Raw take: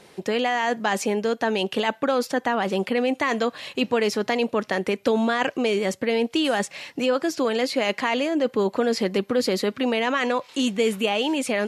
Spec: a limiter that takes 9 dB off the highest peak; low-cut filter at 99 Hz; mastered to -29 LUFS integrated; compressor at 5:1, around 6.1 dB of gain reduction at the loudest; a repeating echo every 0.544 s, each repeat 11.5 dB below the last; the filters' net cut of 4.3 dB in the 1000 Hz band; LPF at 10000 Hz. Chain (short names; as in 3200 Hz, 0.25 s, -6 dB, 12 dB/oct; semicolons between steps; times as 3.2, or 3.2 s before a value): HPF 99 Hz; LPF 10000 Hz; bell 1000 Hz -6 dB; compressor 5:1, threshold -25 dBFS; limiter -22.5 dBFS; feedback echo 0.544 s, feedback 27%, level -11.5 dB; gain +3 dB